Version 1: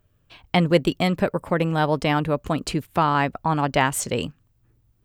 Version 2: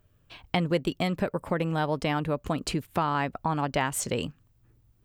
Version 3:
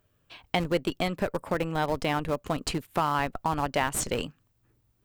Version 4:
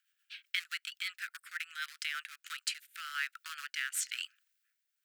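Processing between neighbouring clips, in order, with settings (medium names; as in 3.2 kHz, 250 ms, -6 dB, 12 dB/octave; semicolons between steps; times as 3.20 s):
compression 2:1, threshold -28 dBFS, peak gain reduction 9.5 dB
bass shelf 170 Hz -9.5 dB; in parallel at -5 dB: Schmitt trigger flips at -25.5 dBFS
rotary cabinet horn 8 Hz, later 1 Hz, at 1.69 s; steep high-pass 1.4 kHz 72 dB/octave; trim +1.5 dB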